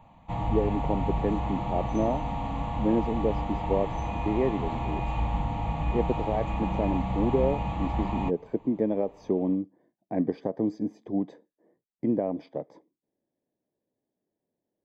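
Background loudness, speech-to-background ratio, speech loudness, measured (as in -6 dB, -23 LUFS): -31.5 LUFS, 1.5 dB, -30.0 LUFS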